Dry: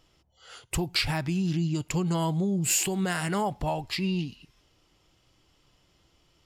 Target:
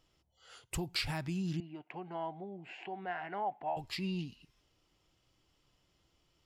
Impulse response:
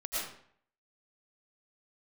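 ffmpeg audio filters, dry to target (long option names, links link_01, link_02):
-filter_complex "[0:a]asettb=1/sr,asplit=3[link_01][link_02][link_03];[link_01]atrim=end=1.604[link_04];[link_02]atrim=start=1.6:end=3.77,asetpts=PTS-STARTPTS,afade=type=in:duration=0.004:curve=qsin,afade=type=out:start_time=2.166:duration=0.004:curve=qsin,highpass=410,equalizer=frequency=500:width_type=q:width=4:gain=-7,equalizer=frequency=740:width_type=q:width=4:gain=9,equalizer=frequency=1200:width_type=q:width=4:gain=-8,lowpass=frequency=2300:width=0.5412,lowpass=frequency=2300:width=1.3066[link_05];[link_03]atrim=start=3.766[link_06];[link_04][link_05]acrossfade=duration=0.004:curve1=hsin:curve2=qsin[link_07];[link_07][link_06]acrossfade=duration=0.004:curve1=qsin:curve2=hsin,volume=-8.5dB"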